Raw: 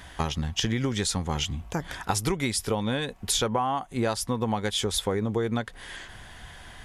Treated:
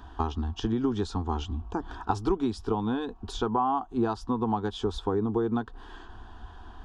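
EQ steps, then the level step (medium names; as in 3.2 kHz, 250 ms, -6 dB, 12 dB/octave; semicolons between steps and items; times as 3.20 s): tape spacing loss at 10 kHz 34 dB; static phaser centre 560 Hz, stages 6; +5.0 dB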